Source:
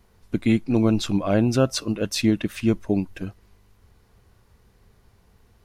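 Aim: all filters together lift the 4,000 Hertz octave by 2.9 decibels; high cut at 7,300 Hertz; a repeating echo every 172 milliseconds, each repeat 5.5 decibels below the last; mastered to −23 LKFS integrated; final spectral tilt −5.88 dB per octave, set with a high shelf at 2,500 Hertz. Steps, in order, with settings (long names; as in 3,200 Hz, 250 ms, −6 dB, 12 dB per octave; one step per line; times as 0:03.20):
low-pass filter 7,300 Hz
high-shelf EQ 2,500 Hz −5.5 dB
parametric band 4,000 Hz +8.5 dB
repeating echo 172 ms, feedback 53%, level −5.5 dB
level −1.5 dB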